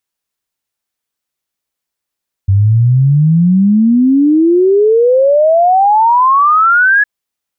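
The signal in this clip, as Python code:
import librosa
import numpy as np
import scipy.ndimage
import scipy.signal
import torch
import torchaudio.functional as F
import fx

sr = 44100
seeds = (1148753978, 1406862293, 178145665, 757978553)

y = fx.ess(sr, length_s=4.56, from_hz=95.0, to_hz=1700.0, level_db=-5.5)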